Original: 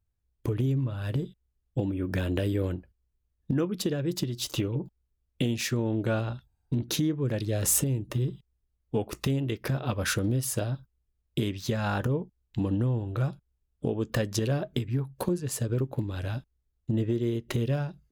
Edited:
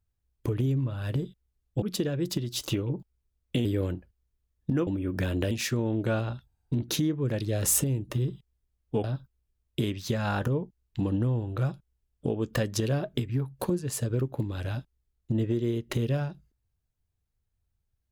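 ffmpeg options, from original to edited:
-filter_complex "[0:a]asplit=6[s0][s1][s2][s3][s4][s5];[s0]atrim=end=1.822[s6];[s1]atrim=start=3.678:end=5.512[s7];[s2]atrim=start=2.458:end=3.682[s8];[s3]atrim=start=1.818:end=2.462[s9];[s4]atrim=start=5.508:end=9.042[s10];[s5]atrim=start=10.628[s11];[s6][s7]acrossfade=d=0.004:c1=hsin:c2=hsin[s12];[s12][s8]acrossfade=d=0.004:c1=hsin:c2=hsin[s13];[s13][s9]acrossfade=d=0.004:c1=hsin:c2=hsin[s14];[s14][s10]acrossfade=d=0.004:c1=hsin:c2=hsin[s15];[s15][s11]acrossfade=d=0.004:c1=hsin:c2=hsin"

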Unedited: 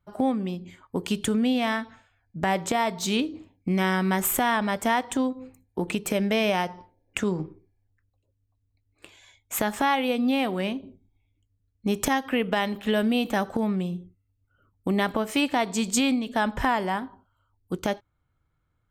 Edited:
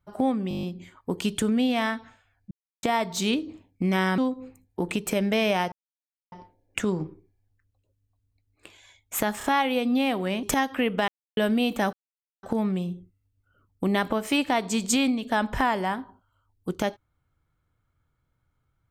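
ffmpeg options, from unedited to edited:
-filter_complex "[0:a]asplit=18[s0][s1][s2][s3][s4][s5][s6][s7][s8][s9][s10][s11][s12][s13][s14][s15][s16][s17];[s0]atrim=end=0.512[s18];[s1]atrim=start=0.488:end=0.512[s19];[s2]atrim=start=0.488:end=0.512[s20];[s3]atrim=start=0.488:end=0.512[s21];[s4]atrim=start=0.488:end=0.512[s22];[s5]atrim=start=0.488:end=0.512[s23];[s6]atrim=start=0.488:end=0.512[s24];[s7]atrim=start=0.488:end=2.37,asetpts=PTS-STARTPTS,afade=t=out:st=1.878:d=0.004:c=hsin[s25];[s8]atrim=start=2.37:end=2.69,asetpts=PTS-STARTPTS,volume=0[s26];[s9]atrim=start=2.69:end=4.042,asetpts=PTS-STARTPTS,afade=t=in:d=0.004:c=hsin[s27];[s10]atrim=start=5.168:end=6.71,asetpts=PTS-STARTPTS,afade=t=out:st=1.538:d=0.004:c=hsin,apad=pad_dur=0.6[s28];[s11]atrim=start=6.71:end=9.802,asetpts=PTS-STARTPTS,afade=t=in:d=0.004:c=hsin[s29];[s12]atrim=start=9.768:end=9.802[s30];[s13]atrim=start=9.768:end=10.762[s31];[s14]atrim=start=11.968:end=12.62,asetpts=PTS-STARTPTS,afade=t=out:st=0.648:d=0.004:c=hsin[s32];[s15]atrim=start=12.62:end=12.91,asetpts=PTS-STARTPTS,volume=0[s33];[s16]atrim=start=12.91:end=13.47,asetpts=PTS-STARTPTS,afade=t=in:d=0.004:c=hsin,afade=t=out:st=0.556:d=0.004:c=hsin,apad=pad_dur=0.5[s34];[s17]atrim=start=13.47,asetpts=PTS-STARTPTS,afade=t=in:d=0.004:c=hsin[s35];[s18][s19]acrossfade=d=0.004:c1=hsin:c2=hsin[s36];[s36][s20]acrossfade=d=0.004:c1=hsin:c2=hsin[s37];[s37][s21]acrossfade=d=0.004:c1=hsin:c2=hsin[s38];[s38][s22]acrossfade=d=0.004:c1=hsin:c2=hsin[s39];[s39][s23]acrossfade=d=0.004:c1=hsin:c2=hsin[s40];[s40][s24]acrossfade=d=0.004:c1=hsin:c2=hsin[s41];[s25][s26][s27]concat=n=3:v=0:a=1[s42];[s41][s42]acrossfade=d=0.004:c1=hsin:c2=hsin[s43];[s28][s29]concat=n=2:v=0:a=1[s44];[s43][s44]acrossfade=d=0.004:c1=hsin:c2=hsin[s45];[s45][s30]acrossfade=d=0.004:c1=hsin:c2=hsin[s46];[s46][s31]acrossfade=d=0.004:c1=hsin:c2=hsin[s47];[s32][s33][s34][s35]concat=n=4:v=0:a=1[s48];[s47][s48]acrossfade=d=0.004:c1=hsin:c2=hsin"

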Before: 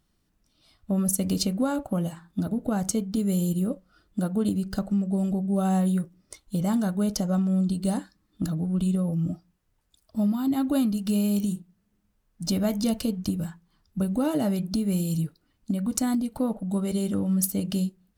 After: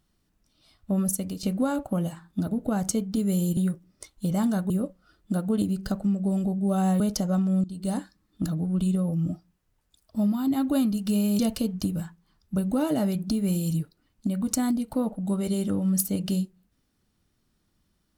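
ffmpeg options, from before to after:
-filter_complex "[0:a]asplit=7[s0][s1][s2][s3][s4][s5][s6];[s0]atrim=end=1.43,asetpts=PTS-STARTPTS,afade=t=out:st=1:d=0.43:silence=0.199526[s7];[s1]atrim=start=1.43:end=3.572,asetpts=PTS-STARTPTS,afade=t=in:d=0.004:c=hsin:silence=0.199526[s8];[s2]atrim=start=5.868:end=7.002[s9];[s3]atrim=start=3.568:end=5.872[s10];[s4]atrim=start=6.998:end=7.64,asetpts=PTS-STARTPTS,afade=t=out:st=0.638:d=0.004:c=hsin:silence=0.112202[s11];[s5]atrim=start=7.64:end=11.392,asetpts=PTS-STARTPTS,afade=t=in:d=0.35:silence=0.112202[s12];[s6]atrim=start=12.828[s13];[s7][s8]concat=n=2:v=0:a=1[s14];[s14][s9]acrossfade=d=0.004:c1=hsin:c2=hsin[s15];[s15][s10]acrossfade=d=0.004:c1=hsin:c2=hsin[s16];[s11][s12]concat=n=2:v=0:a=1[s17];[s16][s17]acrossfade=d=0.004:c1=hsin:c2=hsin[s18];[s18][s13]acrossfade=d=0.004:c1=hsin:c2=hsin"

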